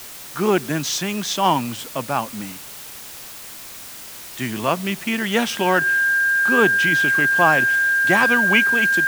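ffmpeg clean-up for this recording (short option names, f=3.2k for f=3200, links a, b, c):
-af "bandreject=f=1.6k:w=30,afftdn=nr=28:nf=-37"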